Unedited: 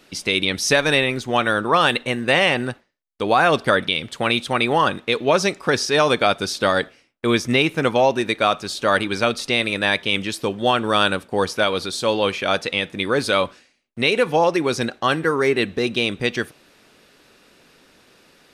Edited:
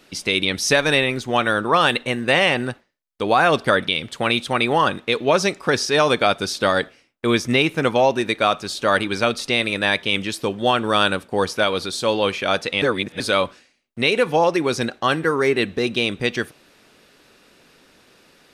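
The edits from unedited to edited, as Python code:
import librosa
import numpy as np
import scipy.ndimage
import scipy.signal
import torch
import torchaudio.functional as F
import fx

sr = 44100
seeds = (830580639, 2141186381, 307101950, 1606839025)

y = fx.edit(x, sr, fx.reverse_span(start_s=12.82, length_s=0.38), tone=tone)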